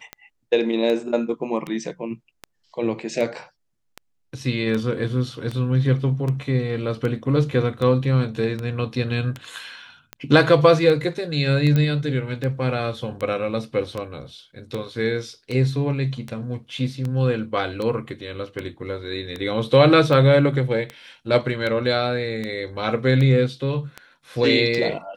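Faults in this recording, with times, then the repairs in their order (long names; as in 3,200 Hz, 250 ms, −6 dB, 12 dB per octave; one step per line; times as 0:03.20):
scratch tick 78 rpm −16 dBFS
0:11.76: click −10 dBFS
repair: click removal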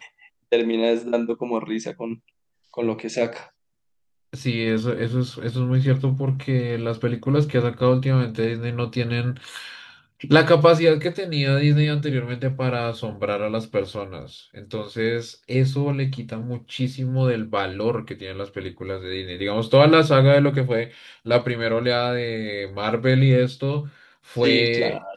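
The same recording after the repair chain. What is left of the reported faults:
none of them is left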